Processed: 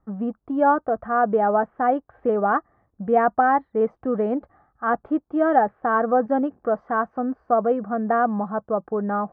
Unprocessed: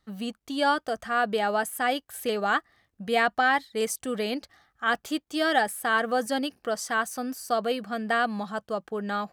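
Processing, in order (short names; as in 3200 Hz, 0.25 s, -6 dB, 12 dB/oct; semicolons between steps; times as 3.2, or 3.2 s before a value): LPF 1200 Hz 24 dB/oct; gain +7 dB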